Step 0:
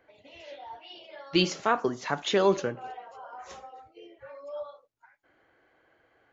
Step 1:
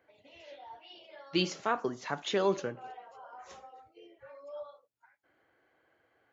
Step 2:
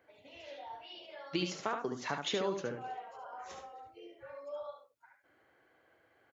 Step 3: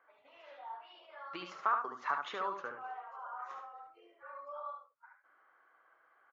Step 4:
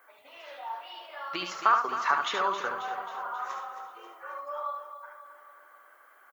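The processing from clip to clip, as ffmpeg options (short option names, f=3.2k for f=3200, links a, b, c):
-af "highpass=63,volume=-5.5dB"
-af "acompressor=threshold=-33dB:ratio=6,aecho=1:1:72:0.501,volume=1.5dB"
-af "bandpass=f=1.2k:t=q:w=4.4:csg=0,volume=10.5dB"
-filter_complex "[0:a]aemphasis=mode=production:type=75fm,asplit=2[a][b];[b]aecho=0:1:269|538|807|1076|1345|1614:0.282|0.158|0.0884|0.0495|0.0277|0.0155[c];[a][c]amix=inputs=2:normalize=0,volume=8.5dB"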